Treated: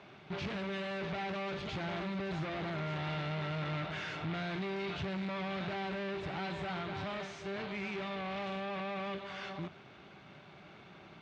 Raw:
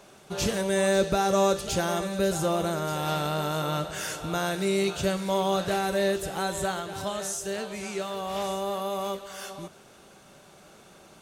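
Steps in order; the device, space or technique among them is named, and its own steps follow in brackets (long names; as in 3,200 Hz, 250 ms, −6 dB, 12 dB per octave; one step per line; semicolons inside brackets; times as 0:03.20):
guitar amplifier (tube saturation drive 39 dB, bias 0.75; bass and treble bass +6 dB, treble 0 dB; loudspeaker in its box 93–3,900 Hz, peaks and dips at 220 Hz −4 dB, 510 Hz −7 dB, 2,200 Hz +6 dB)
level +2.5 dB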